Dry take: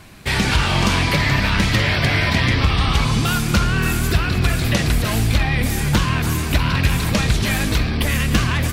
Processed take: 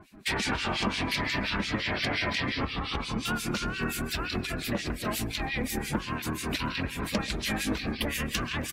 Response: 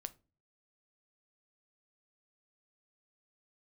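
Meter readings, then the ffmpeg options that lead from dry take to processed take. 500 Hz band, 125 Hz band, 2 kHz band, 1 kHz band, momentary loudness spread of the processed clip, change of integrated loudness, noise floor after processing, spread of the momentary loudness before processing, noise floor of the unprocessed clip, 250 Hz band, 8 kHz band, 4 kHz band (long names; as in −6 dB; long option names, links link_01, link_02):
−9.0 dB, −18.5 dB, −10.5 dB, −10.0 dB, 4 LU, −12.0 dB, −39 dBFS, 3 LU, −22 dBFS, −10.5 dB, −10.5 dB, −9.5 dB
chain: -filter_complex "[0:a]acrossover=split=1900[link_01][link_02];[link_01]aeval=exprs='val(0)*(1-1/2+1/2*cos(2*PI*5.7*n/s))':channel_layout=same[link_03];[link_02]aeval=exprs='val(0)*(1-1/2-1/2*cos(2*PI*5.7*n/s))':channel_layout=same[link_04];[link_03][link_04]amix=inputs=2:normalize=0,acompressor=threshold=-24dB:ratio=5,lowshelf=frequency=180:width_type=q:width=1.5:gain=-7.5,aecho=1:1:133|266|399|532|665:0.119|0.0654|0.036|0.0198|0.0109,afftdn=noise_reduction=12:noise_floor=-44"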